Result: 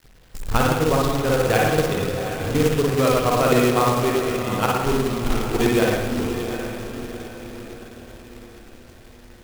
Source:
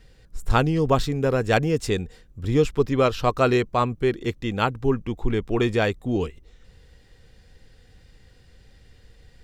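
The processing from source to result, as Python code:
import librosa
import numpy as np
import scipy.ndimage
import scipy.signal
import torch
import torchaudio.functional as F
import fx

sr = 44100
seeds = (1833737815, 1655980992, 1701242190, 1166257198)

y = fx.level_steps(x, sr, step_db=10)
y = fx.echo_diffused(y, sr, ms=759, feedback_pct=47, wet_db=-9)
y = fx.rev_spring(y, sr, rt60_s=1.2, pass_ms=(53, 57), chirp_ms=60, drr_db=-3.5)
y = fx.quant_companded(y, sr, bits=4)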